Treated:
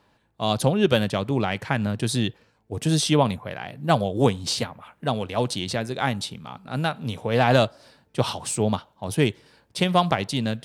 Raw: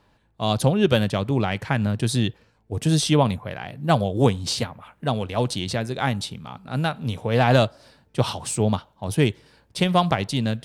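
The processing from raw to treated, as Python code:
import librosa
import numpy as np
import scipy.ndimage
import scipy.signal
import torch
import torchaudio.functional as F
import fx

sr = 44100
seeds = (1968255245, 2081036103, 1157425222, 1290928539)

y = fx.low_shelf(x, sr, hz=81.0, db=-11.0)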